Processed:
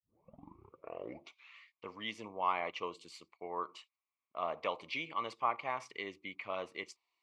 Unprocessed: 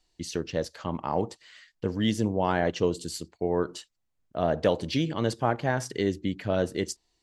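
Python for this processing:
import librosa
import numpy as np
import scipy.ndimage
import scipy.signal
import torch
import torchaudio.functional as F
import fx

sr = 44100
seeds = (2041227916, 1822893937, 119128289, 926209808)

y = fx.tape_start_head(x, sr, length_s=1.65)
y = fx.double_bandpass(y, sr, hz=1600.0, octaves=1.0)
y = F.gain(torch.from_numpy(y), 4.5).numpy()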